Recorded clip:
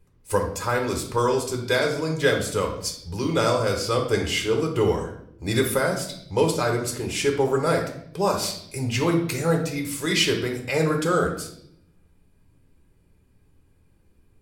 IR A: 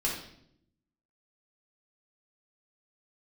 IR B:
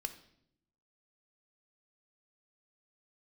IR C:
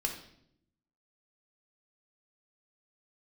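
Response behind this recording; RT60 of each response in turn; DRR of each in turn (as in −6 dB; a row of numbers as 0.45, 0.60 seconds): C; 0.70, 0.70, 0.70 seconds; −4.5, 8.0, 1.5 decibels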